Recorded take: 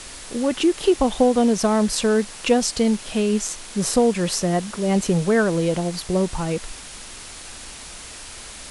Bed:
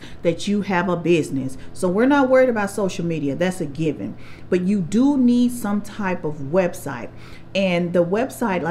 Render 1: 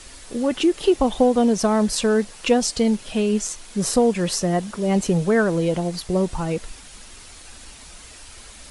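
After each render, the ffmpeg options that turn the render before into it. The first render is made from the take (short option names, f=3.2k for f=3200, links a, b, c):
-af "afftdn=nr=7:nf=-38"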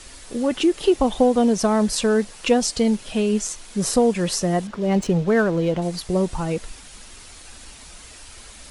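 -filter_complex "[0:a]asettb=1/sr,asplit=3[a][b][c];[a]atrim=end=4.674[d];[b]atrim=start=4.67:end=5.82,asetpts=PTS-STARTPTS,afade=t=in:d=0.004:c=qsin,afade=t=out:st=1.146:d=0.004:c=qsin,adynamicsmooth=sensitivity=4.5:basefreq=3.4k[e];[c]atrim=start=5.816[f];[d][e]acrossfade=d=0.004:c1=hsin:c2=qsin[g];[g][f]acrossfade=d=0.004:c1=qsin:c2=hsin"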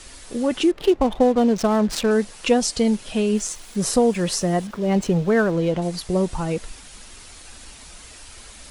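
-filter_complex "[0:a]asettb=1/sr,asplit=3[a][b][c];[a]atrim=end=0.714[d];[b]atrim=start=0.71:end=2.11,asetpts=PTS-STARTPTS,afade=t=in:d=0.004:c=qsin,afade=t=out:st=1.396:d=0.004:c=qsin,adynamicsmooth=sensitivity=5.5:basefreq=790[e];[c]atrim=start=2.106[f];[d][e]acrossfade=d=0.004:c1=hsin:c2=qsin[g];[g][f]acrossfade=d=0.004:c1=qsin:c2=hsin,asettb=1/sr,asplit=3[h][i][j];[h]atrim=end=3.344[k];[i]atrim=start=3.34:end=5.52,asetpts=PTS-STARTPTS,afade=t=in:d=0.004:c=qsin,afade=t=out:st=2.176:d=0.004:c=qsin,aeval=exprs='val(0)*gte(abs(val(0)),0.00631)':c=same[l];[j]atrim=start=5.516[m];[k][l]acrossfade=d=0.004:c1=hsin:c2=qsin[n];[n][m]acrossfade=d=0.004:c1=qsin:c2=hsin"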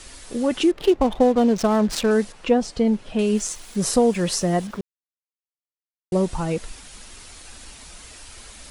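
-filter_complex "[0:a]asettb=1/sr,asplit=3[a][b][c];[a]atrim=end=2.324[d];[b]atrim=start=2.32:end=3.19,asetpts=PTS-STARTPTS,afade=t=in:d=0.004:c=qsin,afade=t=out:st=0.866:d=0.004:c=qsin,lowpass=f=1.5k:p=1[e];[c]atrim=start=3.186[f];[d][e]acrossfade=d=0.004:c1=hsin:c2=qsin[g];[g][f]acrossfade=d=0.004:c1=qsin:c2=hsin,asplit=3[h][i][j];[h]atrim=end=4.81,asetpts=PTS-STARTPTS,afade=t=out:st=4.806:d=0.004:c=hsin[k];[i]atrim=start=4.81:end=6.12,asetpts=PTS-STARTPTS,volume=0[l];[j]atrim=start=6.12,asetpts=PTS-STARTPTS,afade=t=in:d=0.004:c=hsin[m];[k][l][m]concat=n=3:v=0:a=1"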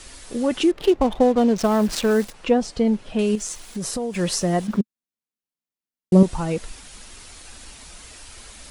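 -filter_complex "[0:a]asettb=1/sr,asplit=3[a][b][c];[a]atrim=end=1.634[d];[b]atrim=start=1.63:end=2.34,asetpts=PTS-STARTPTS,afade=t=in:d=0.004:c=qsin,afade=t=out:st=0.706:d=0.004:c=qsin,acrusher=bits=7:dc=4:mix=0:aa=0.000001[e];[c]atrim=start=2.336[f];[d][e]acrossfade=d=0.004:c1=hsin:c2=qsin[g];[g][f]acrossfade=d=0.004:c1=qsin:c2=hsin,asettb=1/sr,asplit=3[h][i][j];[h]atrim=end=3.354[k];[i]atrim=start=3.35:end=4.14,asetpts=PTS-STARTPTS,afade=t=in:d=0.004:c=qsin,afade=t=out:st=0.786:d=0.004:c=qsin,acompressor=threshold=-25dB:ratio=4:attack=3.2:release=140:knee=1:detection=peak[l];[j]atrim=start=4.136[m];[k][l]acrossfade=d=0.004:c1=hsin:c2=qsin[n];[n][m]acrossfade=d=0.004:c1=qsin:c2=hsin,asettb=1/sr,asplit=3[o][p][q];[o]atrim=end=4.684[r];[p]atrim=start=4.68:end=6.23,asetpts=PTS-STARTPTS,afade=t=in:d=0.004:c=qsin,afade=t=out:st=1.546:d=0.004:c=qsin,equalizer=f=220:w=1.5:g=14[s];[q]atrim=start=6.226[t];[r][s]acrossfade=d=0.004:c1=hsin:c2=qsin[u];[u][t]acrossfade=d=0.004:c1=qsin:c2=hsin"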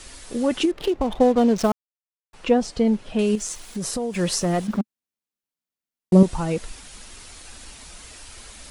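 -filter_complex "[0:a]asettb=1/sr,asplit=3[a][b][c];[a]atrim=end=0.654[d];[b]atrim=start=0.65:end=1.21,asetpts=PTS-STARTPTS,afade=t=in:d=0.004:c=qsin,afade=t=out:st=0.556:d=0.004:c=qsin,acompressor=threshold=-17dB:ratio=6:attack=3.2:release=140:knee=1:detection=peak[e];[c]atrim=start=1.206[f];[d][e]acrossfade=d=0.004:c1=hsin:c2=qsin[g];[g][f]acrossfade=d=0.004:c1=qsin:c2=hsin,asettb=1/sr,asplit=3[h][i][j];[h]atrim=end=4.434[k];[i]atrim=start=4.43:end=6.13,asetpts=PTS-STARTPTS,afade=t=in:d=0.004:c=qsin,afade=t=out:st=1.696:d=0.004:c=qsin,asoftclip=type=hard:threshold=-17dB[l];[j]atrim=start=6.126[m];[k][l]acrossfade=d=0.004:c1=hsin:c2=qsin[n];[n][m]acrossfade=d=0.004:c1=qsin:c2=hsin,asplit=3[o][p][q];[o]atrim=end=1.72,asetpts=PTS-STARTPTS,afade=t=out:st=1.716:d=0.004:c=hsin[r];[p]atrim=start=1.72:end=2.33,asetpts=PTS-STARTPTS,volume=0[s];[q]atrim=start=2.33,asetpts=PTS-STARTPTS,afade=t=in:d=0.004:c=hsin[t];[r][s][t]concat=n=3:v=0:a=1"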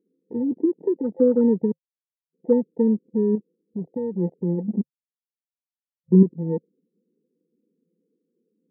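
-af "afftfilt=real='re*between(b*sr/4096,160,520)':imag='im*between(b*sr/4096,160,520)':win_size=4096:overlap=0.75,afwtdn=0.0282"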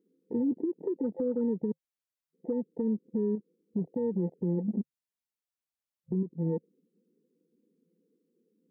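-af "acompressor=threshold=-23dB:ratio=6,alimiter=limit=-22dB:level=0:latency=1:release=130"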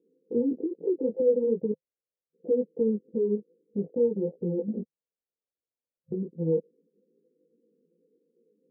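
-af "flanger=delay=17:depth=2.8:speed=2.5,lowpass=f=500:t=q:w=4.1"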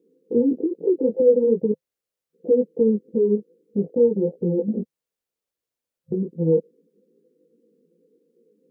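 -af "volume=7dB"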